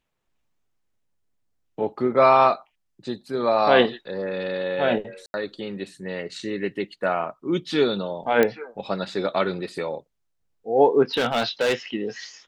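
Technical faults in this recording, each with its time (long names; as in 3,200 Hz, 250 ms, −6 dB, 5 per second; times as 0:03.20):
0:05.26–0:05.34: drop-out 81 ms
0:08.43: click −7 dBFS
0:11.14–0:11.74: clipping −17.5 dBFS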